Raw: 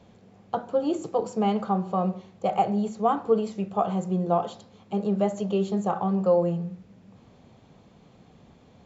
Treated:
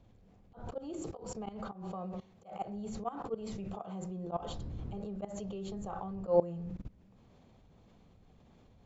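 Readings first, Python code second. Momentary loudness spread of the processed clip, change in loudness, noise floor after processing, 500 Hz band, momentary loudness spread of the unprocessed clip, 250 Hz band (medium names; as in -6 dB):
12 LU, -12.5 dB, -62 dBFS, -11.5 dB, 9 LU, -14.0 dB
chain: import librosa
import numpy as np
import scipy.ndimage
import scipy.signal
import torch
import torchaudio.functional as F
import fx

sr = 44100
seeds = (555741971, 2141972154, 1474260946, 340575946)

y = fx.dmg_wind(x, sr, seeds[0], corner_hz=110.0, level_db=-42.0)
y = fx.level_steps(y, sr, step_db=21)
y = fx.auto_swell(y, sr, attack_ms=151.0)
y = F.gain(torch.from_numpy(y), 2.0).numpy()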